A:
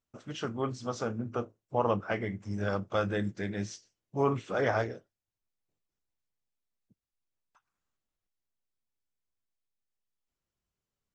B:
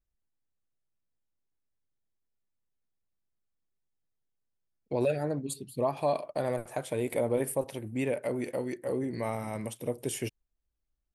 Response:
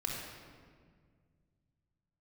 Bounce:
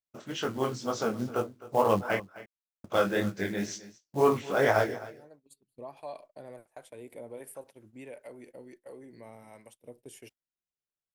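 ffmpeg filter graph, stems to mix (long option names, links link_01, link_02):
-filter_complex "[0:a]acontrast=85,acrusher=bits=6:mode=log:mix=0:aa=0.000001,flanger=delay=18.5:depth=6.3:speed=2.1,volume=1dB,asplit=3[link_01][link_02][link_03];[link_01]atrim=end=2.2,asetpts=PTS-STARTPTS,afade=type=out:start_time=2.196:duration=0.004:curve=hsin[link_04];[link_02]atrim=start=2.2:end=2.84,asetpts=PTS-STARTPTS,volume=0[link_05];[link_03]atrim=start=2.84,asetpts=PTS-STARTPTS,afade=type=in:duration=0.004:curve=hsin[link_06];[link_04][link_05][link_06]concat=n=3:v=0:a=1,asplit=3[link_07][link_08][link_09];[link_08]volume=-17.5dB[link_10];[1:a]acrossover=split=470[link_11][link_12];[link_11]aeval=exprs='val(0)*(1-0.5/2+0.5/2*cos(2*PI*1.4*n/s))':channel_layout=same[link_13];[link_12]aeval=exprs='val(0)*(1-0.5/2-0.5/2*cos(2*PI*1.4*n/s))':channel_layout=same[link_14];[link_13][link_14]amix=inputs=2:normalize=0,volume=-11dB[link_15];[link_09]apad=whole_len=491516[link_16];[link_15][link_16]sidechaincompress=threshold=-33dB:ratio=4:attack=9.3:release=805[link_17];[link_10]aecho=0:1:260:1[link_18];[link_07][link_17][link_18]amix=inputs=3:normalize=0,bandreject=frequency=1200:width=19,agate=range=-17dB:threshold=-51dB:ratio=16:detection=peak,lowshelf=frequency=150:gain=-10.5"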